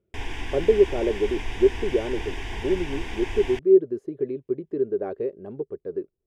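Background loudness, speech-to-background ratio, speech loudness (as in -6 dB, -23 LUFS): -35.0 LUFS, 10.0 dB, -25.0 LUFS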